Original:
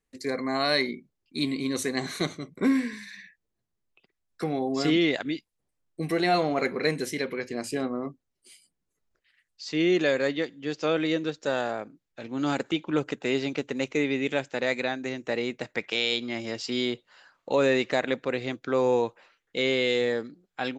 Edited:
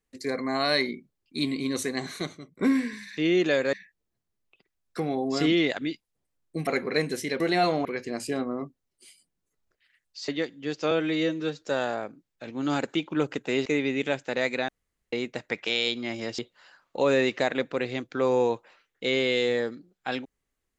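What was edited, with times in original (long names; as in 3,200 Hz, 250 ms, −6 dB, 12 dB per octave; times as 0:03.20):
0:01.74–0:02.59: fade out, to −10 dB
0:06.11–0:06.56: move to 0:07.29
0:09.72–0:10.28: move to 0:03.17
0:10.91–0:11.38: time-stretch 1.5×
0:13.42–0:13.91: remove
0:14.94–0:15.38: fill with room tone
0:16.64–0:16.91: remove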